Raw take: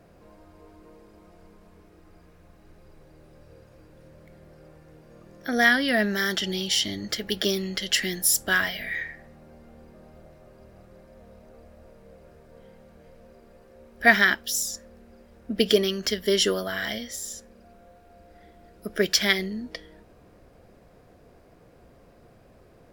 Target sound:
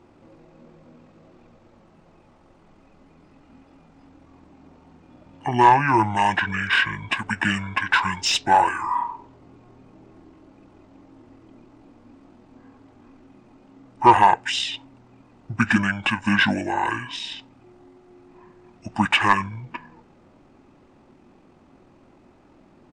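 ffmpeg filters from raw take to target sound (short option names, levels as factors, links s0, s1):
-filter_complex "[0:a]equalizer=f=65:w=1:g=-7.5,asetrate=22696,aresample=44100,atempo=1.94306,asplit=2[s0][s1];[s1]highpass=f=720:p=1,volume=5.01,asoftclip=type=tanh:threshold=0.75[s2];[s0][s2]amix=inputs=2:normalize=0,lowpass=f=1600:p=1,volume=0.501,volume=1.26"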